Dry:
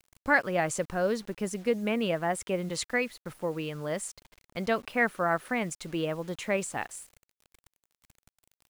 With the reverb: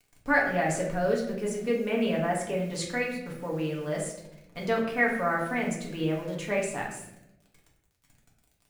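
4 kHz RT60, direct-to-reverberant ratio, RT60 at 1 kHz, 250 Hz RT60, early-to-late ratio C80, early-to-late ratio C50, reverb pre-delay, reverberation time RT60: 0.55 s, -3.0 dB, 0.70 s, 1.3 s, 7.5 dB, 4.5 dB, 4 ms, 0.85 s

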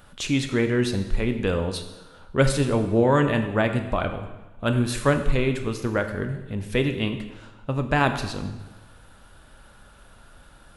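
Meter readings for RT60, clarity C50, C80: 1.1 s, 9.0 dB, 10.5 dB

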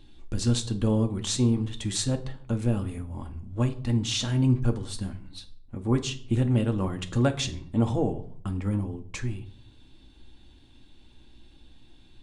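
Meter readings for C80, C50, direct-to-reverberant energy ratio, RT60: 19.5 dB, 15.0 dB, 5.5 dB, 0.55 s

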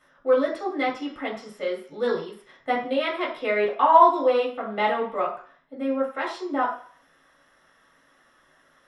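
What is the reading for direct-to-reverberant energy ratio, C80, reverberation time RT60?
-5.0 dB, 10.5 dB, 0.45 s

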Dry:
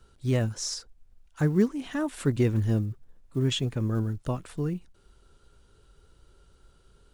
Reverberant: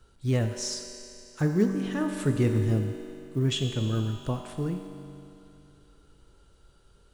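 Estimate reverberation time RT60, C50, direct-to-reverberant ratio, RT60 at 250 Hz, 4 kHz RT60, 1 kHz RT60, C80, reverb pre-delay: 2.7 s, 5.5 dB, 4.0 dB, 2.7 s, 2.7 s, 2.7 s, 6.5 dB, 5 ms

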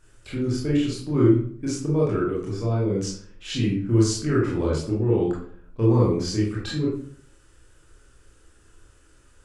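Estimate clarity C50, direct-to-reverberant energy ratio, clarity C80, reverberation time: 2.5 dB, -5.5 dB, 7.5 dB, 0.55 s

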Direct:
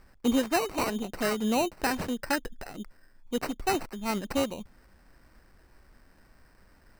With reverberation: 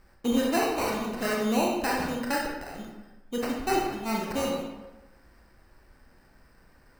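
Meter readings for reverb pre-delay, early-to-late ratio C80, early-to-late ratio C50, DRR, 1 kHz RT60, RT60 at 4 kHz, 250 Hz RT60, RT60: 26 ms, 4.5 dB, 1.5 dB, -2.0 dB, 1.1 s, 0.70 s, 0.95 s, 1.1 s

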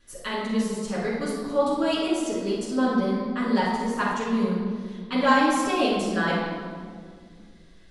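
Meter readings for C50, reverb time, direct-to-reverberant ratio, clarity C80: -1.0 dB, 2.0 s, -9.0 dB, 2.0 dB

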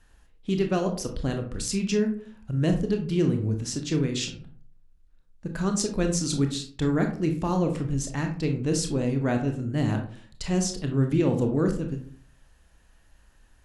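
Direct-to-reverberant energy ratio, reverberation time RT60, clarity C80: 4.0 dB, 0.50 s, 14.0 dB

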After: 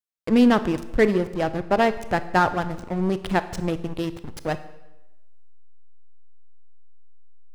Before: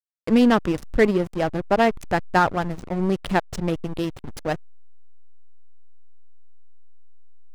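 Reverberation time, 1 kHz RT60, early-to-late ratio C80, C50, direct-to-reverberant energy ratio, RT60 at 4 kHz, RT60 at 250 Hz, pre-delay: 1.0 s, 1.0 s, 16.0 dB, 14.0 dB, 12.0 dB, 0.85 s, 0.95 s, 23 ms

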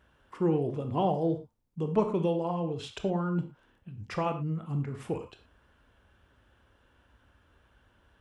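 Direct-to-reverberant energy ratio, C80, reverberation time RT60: 6.5 dB, 14.0 dB, not exponential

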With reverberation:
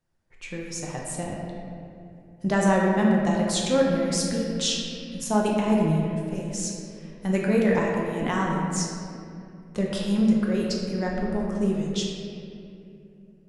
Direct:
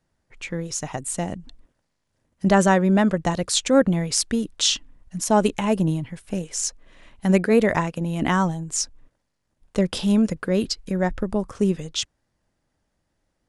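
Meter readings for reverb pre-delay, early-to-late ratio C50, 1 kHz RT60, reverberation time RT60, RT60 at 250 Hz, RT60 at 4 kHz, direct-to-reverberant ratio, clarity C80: 6 ms, 0.5 dB, 2.3 s, 2.7 s, 3.6 s, 1.5 s, -2.5 dB, 1.5 dB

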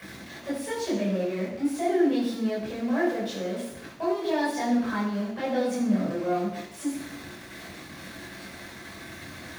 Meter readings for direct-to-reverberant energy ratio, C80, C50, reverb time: -7.5 dB, 6.0 dB, 3.5 dB, 0.80 s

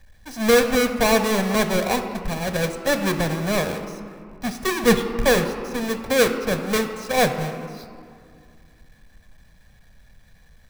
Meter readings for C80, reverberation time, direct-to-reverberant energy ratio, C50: 9.5 dB, 2.3 s, 7.0 dB, 8.5 dB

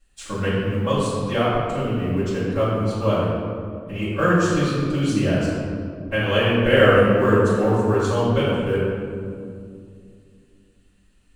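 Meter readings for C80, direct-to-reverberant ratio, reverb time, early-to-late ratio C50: 0.0 dB, -12.5 dB, 2.3 s, -2.0 dB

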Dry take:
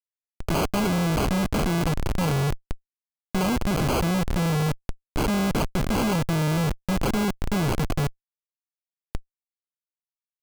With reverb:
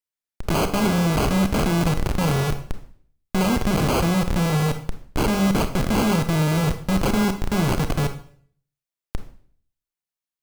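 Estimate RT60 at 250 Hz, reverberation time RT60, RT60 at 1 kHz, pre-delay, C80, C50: 0.60 s, 0.55 s, 0.50 s, 27 ms, 15.0 dB, 10.5 dB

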